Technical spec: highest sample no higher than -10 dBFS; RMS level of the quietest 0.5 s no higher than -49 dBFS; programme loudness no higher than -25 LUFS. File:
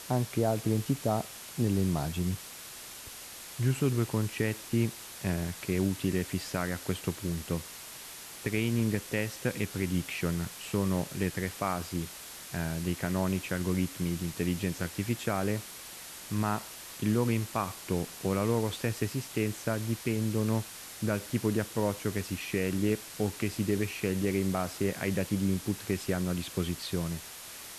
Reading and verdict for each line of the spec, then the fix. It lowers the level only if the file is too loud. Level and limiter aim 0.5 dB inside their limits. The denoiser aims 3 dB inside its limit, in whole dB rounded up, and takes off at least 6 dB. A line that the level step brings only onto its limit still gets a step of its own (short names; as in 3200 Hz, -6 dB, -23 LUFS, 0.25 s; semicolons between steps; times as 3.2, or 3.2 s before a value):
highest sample -14.5 dBFS: OK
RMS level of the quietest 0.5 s -45 dBFS: fail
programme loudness -32.0 LUFS: OK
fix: denoiser 7 dB, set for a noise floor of -45 dBFS